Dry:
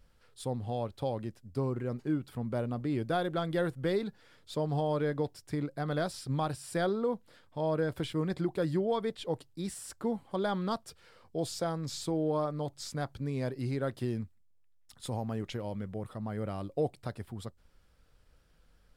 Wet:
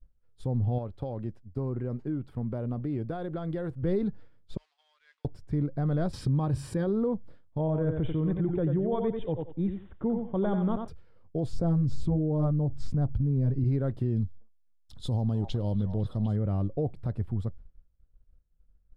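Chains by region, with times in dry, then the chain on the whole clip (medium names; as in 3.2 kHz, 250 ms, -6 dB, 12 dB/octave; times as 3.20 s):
0.78–3.83 s: bass shelf 270 Hz -8.5 dB + compression 3:1, threshold -35 dBFS
4.57–5.25 s: jump at every zero crossing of -44 dBFS + Bessel high-pass 3 kHz, order 4 + distance through air 66 m
6.13–6.88 s: comb of notches 690 Hz + level flattener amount 70%
7.58–10.88 s: Chebyshev low-pass 3.6 kHz, order 8 + thinning echo 90 ms, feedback 26%, high-pass 170 Hz, level -6 dB
11.53–13.64 s: bass shelf 490 Hz +9.5 dB + LFO notch sine 2.9 Hz 330–3100 Hz
14.16–16.36 s: resonant high shelf 2.8 kHz +8 dB, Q 3 + repeats whose band climbs or falls 251 ms, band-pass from 910 Hz, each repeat 0.7 oct, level -7 dB
whole clip: expander -50 dBFS; tilt EQ -4.5 dB/octave; peak limiter -18.5 dBFS; trim -1.5 dB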